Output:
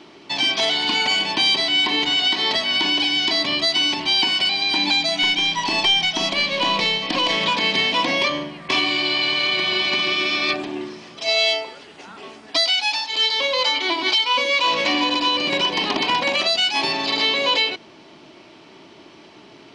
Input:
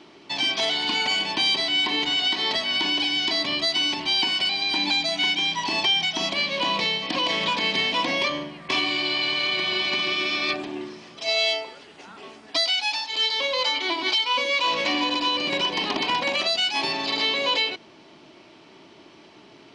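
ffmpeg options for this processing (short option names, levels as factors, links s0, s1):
-filter_complex "[0:a]asettb=1/sr,asplit=3[s0][s1][s2];[s0]atrim=end=5.224[s3];[s1]atrim=start=5.22:end=7.36,asetpts=PTS-STARTPTS,afade=t=in:d=0.004:c=qsin,afade=t=out:st=2.136:d=0.004:c=qsin,aeval=exprs='0.237*(cos(1*acos(clip(val(0)/0.237,-1,1)))-cos(1*PI/2))+0.0211*(cos(2*acos(clip(val(0)/0.237,-1,1)))-cos(2*PI/2))':c=same[s4];[s2]atrim=start=7.356[s5];[s3][s4]acrossfade=d=0.004:c1=hsin:c2=qsin[s6];[s6][s5]acrossfade=d=0.004:c1=qsin:c2=hsin,volume=1.58"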